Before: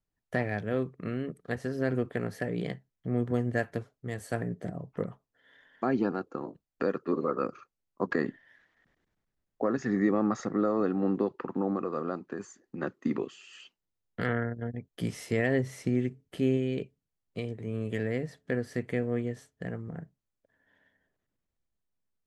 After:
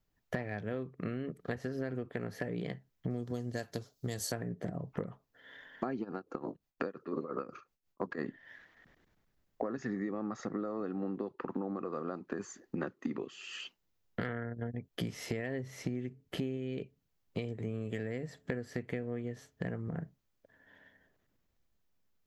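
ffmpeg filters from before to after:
ffmpeg -i in.wav -filter_complex "[0:a]asettb=1/sr,asplit=3[link_01][link_02][link_03];[link_01]atrim=end=3.104[link_04];[link_02]atrim=start=3.1:end=4.32,asetpts=PTS-STARTPTS,afade=type=in:duration=0.004:curve=qsin,afade=type=out:start_time=1.216:duration=0.004:curve=qsin,highshelf=frequency=3200:width_type=q:width=1.5:gain=13[link_05];[link_03]atrim=start=4.316[link_06];[link_04][link_05]acrossfade=duration=0.004:curve1=hsin:curve2=qsin[link_07];[link_07][link_06]acrossfade=duration=0.004:curve1=qsin:curve2=hsin,asplit=3[link_08][link_09][link_10];[link_08]afade=type=out:start_time=6.03:duration=0.02[link_11];[link_09]tremolo=f=5.7:d=0.84,afade=type=in:start_time=6.03:duration=0.02,afade=type=out:start_time=8.23:duration=0.02[link_12];[link_10]afade=type=in:start_time=8.23:duration=0.02[link_13];[link_11][link_12][link_13]amix=inputs=3:normalize=0,asettb=1/sr,asplit=3[link_14][link_15][link_16];[link_14]atrim=end=17.424[link_17];[link_15]atrim=start=17.42:end=18.71,asetpts=PTS-STARTPTS,afade=type=in:duration=0.004:curve=qsin,afade=type=out:start_time=1.286:duration=0.004:curve=qsin,equalizer=frequency=7500:width=7:gain=9[link_18];[link_16]atrim=start=18.706[link_19];[link_17][link_18]acrossfade=duration=0.004:curve1=hsin:curve2=qsin[link_20];[link_20][link_19]acrossfade=duration=0.004:curve1=qsin:curve2=hsin,equalizer=frequency=9100:width_type=o:width=0.26:gain=-15,acompressor=threshold=-40dB:ratio=12,volume=7dB" out.wav

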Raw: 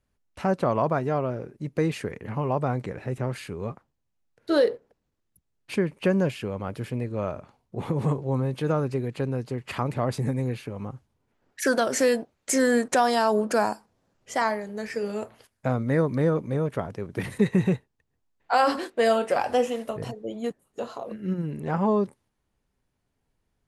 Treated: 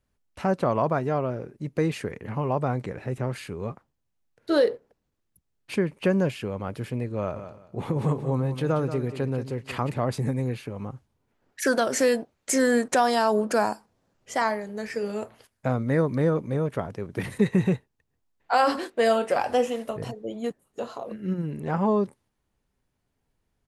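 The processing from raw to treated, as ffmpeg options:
ffmpeg -i in.wav -filter_complex "[0:a]asplit=3[link_01][link_02][link_03];[link_01]afade=type=out:start_time=7.34:duration=0.02[link_04];[link_02]aecho=1:1:181|362|543:0.282|0.0648|0.0149,afade=type=in:start_time=7.34:duration=0.02,afade=type=out:start_time=9.89:duration=0.02[link_05];[link_03]afade=type=in:start_time=9.89:duration=0.02[link_06];[link_04][link_05][link_06]amix=inputs=3:normalize=0" out.wav

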